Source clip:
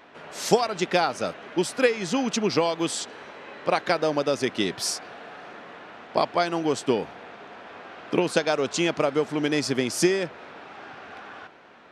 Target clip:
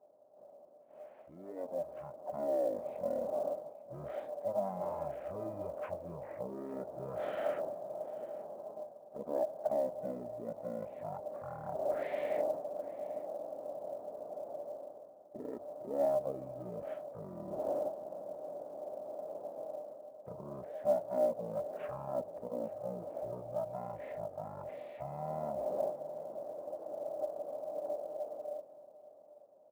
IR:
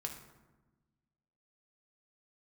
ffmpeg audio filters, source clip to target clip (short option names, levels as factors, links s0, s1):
-filter_complex "[0:a]aemphasis=mode=reproduction:type=75kf,agate=range=0.282:threshold=0.01:ratio=16:detection=peak,areverse,acompressor=threshold=0.0224:ratio=16,areverse,alimiter=level_in=2.51:limit=0.0631:level=0:latency=1:release=67,volume=0.398,dynaudnorm=f=140:g=11:m=3.98,bandpass=f=1500:t=q:w=14:csg=0,asetrate=17684,aresample=44100,acrusher=bits=8:mode=log:mix=0:aa=0.000001,asplit=2[s0][s1];[s1]asetrate=55563,aresample=44100,atempo=0.793701,volume=0.2[s2];[s0][s2]amix=inputs=2:normalize=0,aecho=1:1:850:0.1,volume=4.22"